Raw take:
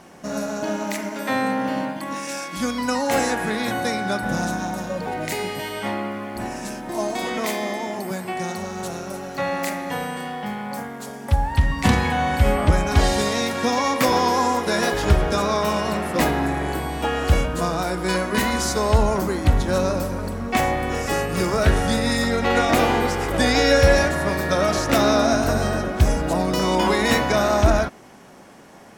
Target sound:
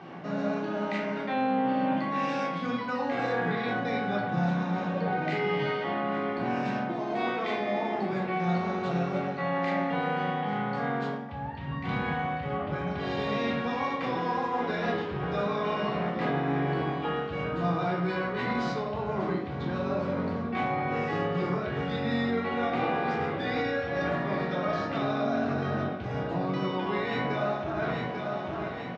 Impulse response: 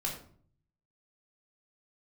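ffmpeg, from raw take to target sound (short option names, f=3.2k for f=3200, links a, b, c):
-filter_complex "[0:a]lowpass=f=3.6k:w=0.5412,lowpass=f=3.6k:w=1.3066,aecho=1:1:843|1686|2529|3372:0.126|0.0667|0.0354|0.0187,areverse,acompressor=threshold=-29dB:ratio=12,areverse,highpass=f=110:w=0.5412,highpass=f=110:w=1.3066[a];[1:a]atrim=start_sample=2205[b];[a][b]afir=irnorm=-1:irlink=0"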